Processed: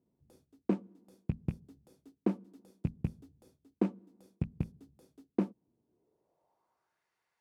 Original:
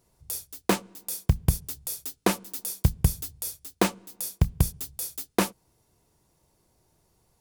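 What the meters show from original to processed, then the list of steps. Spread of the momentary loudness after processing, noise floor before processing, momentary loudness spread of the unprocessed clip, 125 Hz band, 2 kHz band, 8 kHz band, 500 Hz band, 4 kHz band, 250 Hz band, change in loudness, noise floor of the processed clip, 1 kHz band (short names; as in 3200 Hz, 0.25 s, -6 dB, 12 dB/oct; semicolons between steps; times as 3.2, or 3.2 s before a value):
6 LU, -69 dBFS, 9 LU, -11.0 dB, -22.5 dB, under -35 dB, -9.0 dB, under -25 dB, -4.0 dB, -8.5 dB, -85 dBFS, -18.0 dB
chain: rattling part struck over -24 dBFS, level -15 dBFS; band-pass sweep 250 Hz -> 1800 Hz, 5.8–7.02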